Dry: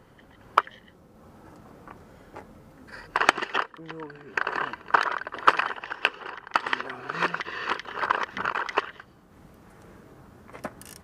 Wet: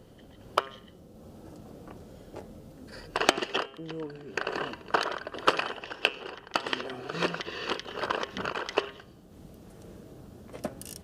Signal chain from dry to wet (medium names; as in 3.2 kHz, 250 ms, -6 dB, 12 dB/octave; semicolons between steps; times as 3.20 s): high-order bell 1.4 kHz -10 dB; de-hum 134.8 Hz, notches 24; trim +3 dB